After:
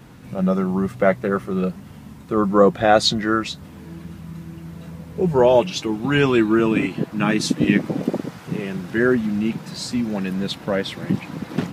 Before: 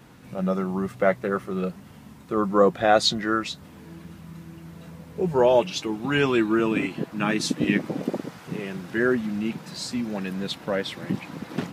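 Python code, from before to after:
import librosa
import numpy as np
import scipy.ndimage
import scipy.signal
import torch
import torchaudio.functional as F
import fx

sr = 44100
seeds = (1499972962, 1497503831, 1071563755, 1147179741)

y = fx.low_shelf(x, sr, hz=210.0, db=6.0)
y = y * librosa.db_to_amplitude(3.0)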